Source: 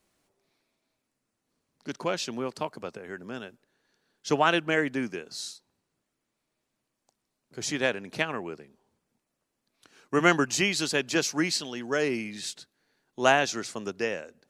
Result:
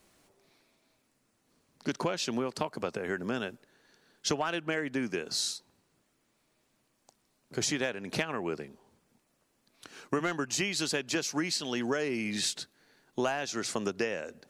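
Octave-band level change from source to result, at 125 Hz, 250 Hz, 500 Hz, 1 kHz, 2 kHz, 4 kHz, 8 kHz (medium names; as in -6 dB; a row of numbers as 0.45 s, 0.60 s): -3.0 dB, -3.0 dB, -4.5 dB, -7.0 dB, -6.5 dB, -2.0 dB, -0.5 dB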